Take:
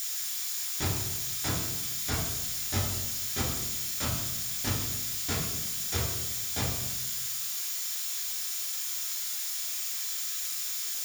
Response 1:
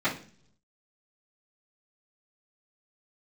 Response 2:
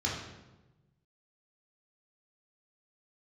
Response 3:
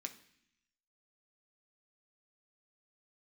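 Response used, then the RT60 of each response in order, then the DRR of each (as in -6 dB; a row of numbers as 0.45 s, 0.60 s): 2; 0.45 s, 1.1 s, 0.65 s; -15.0 dB, -5.5 dB, 4.0 dB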